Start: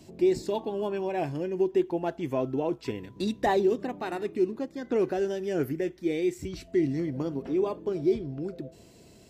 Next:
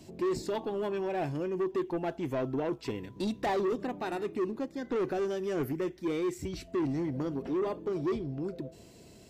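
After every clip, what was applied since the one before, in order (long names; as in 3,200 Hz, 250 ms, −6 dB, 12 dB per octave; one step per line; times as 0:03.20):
soft clipping −26 dBFS, distortion −10 dB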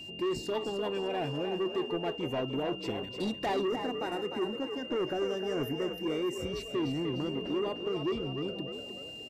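echo with shifted repeats 301 ms, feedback 43%, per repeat +57 Hz, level −7.5 dB
gain on a spectral selection 0:03.67–0:06.56, 2,300–4,900 Hz −7 dB
steady tone 2,800 Hz −41 dBFS
level −1.5 dB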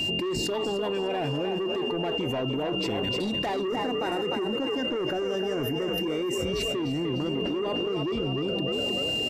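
envelope flattener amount 100%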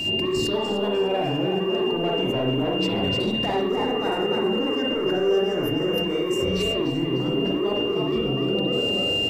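background noise blue −67 dBFS
convolution reverb, pre-delay 43 ms, DRR −0.5 dB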